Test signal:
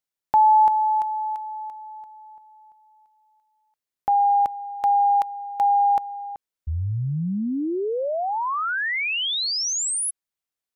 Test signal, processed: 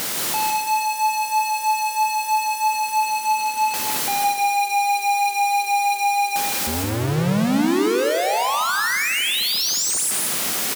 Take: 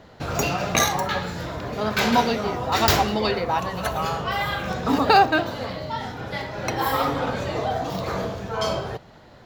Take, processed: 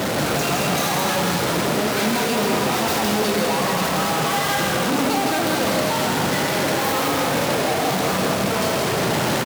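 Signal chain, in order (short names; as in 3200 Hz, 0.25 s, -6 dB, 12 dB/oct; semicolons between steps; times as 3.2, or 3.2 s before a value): infinite clipping; HPF 200 Hz 12 dB/oct; low shelf 260 Hz +10.5 dB; vibrato 3.1 Hz 8.6 cents; on a send: loudspeakers at several distances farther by 56 m -4 dB, 78 m -10 dB; on the sum: non-linear reverb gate 0.38 s flat, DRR 7.5 dB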